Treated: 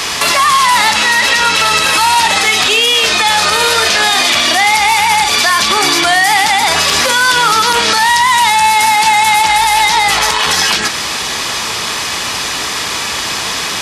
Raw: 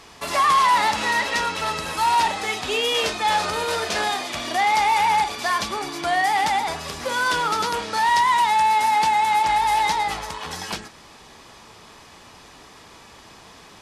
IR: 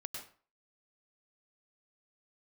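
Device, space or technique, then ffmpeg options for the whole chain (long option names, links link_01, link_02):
mastering chain: -filter_complex "[0:a]highpass=47,equalizer=frequency=830:width_type=o:width=0.77:gain=-2,acrossover=split=210|5500[link_01][link_02][link_03];[link_01]acompressor=threshold=-45dB:ratio=4[link_04];[link_02]acompressor=threshold=-30dB:ratio=4[link_05];[link_03]acompressor=threshold=-45dB:ratio=4[link_06];[link_04][link_05][link_06]amix=inputs=3:normalize=0,acompressor=threshold=-33dB:ratio=2.5,tiltshelf=frequency=970:gain=-6,asoftclip=type=hard:threshold=-20.5dB,alimiter=level_in=27dB:limit=-1dB:release=50:level=0:latency=1,volume=-1dB"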